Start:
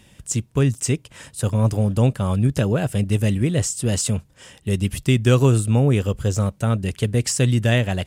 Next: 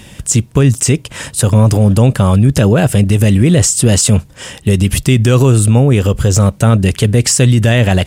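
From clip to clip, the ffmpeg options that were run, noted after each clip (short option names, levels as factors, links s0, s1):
-af "alimiter=level_in=6.68:limit=0.891:release=50:level=0:latency=1,volume=0.891"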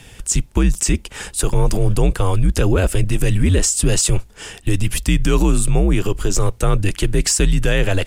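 -af "afreqshift=-85,volume=0.562"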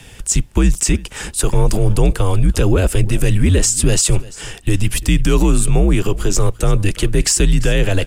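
-filter_complex "[0:a]acrossover=split=420|540|2300[s0][s1][s2][s3];[s2]alimiter=limit=0.075:level=0:latency=1[s4];[s0][s1][s4][s3]amix=inputs=4:normalize=0,aecho=1:1:343:0.1,volume=1.26"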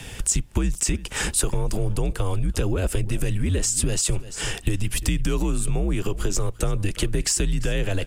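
-af "acompressor=threshold=0.0891:ratio=10,volume=1.33"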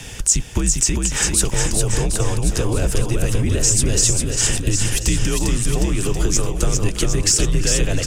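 -af "equalizer=f=6100:w=2.1:g=7.5,aecho=1:1:400|760|1084|1376|1638:0.631|0.398|0.251|0.158|0.1,volume=1.33"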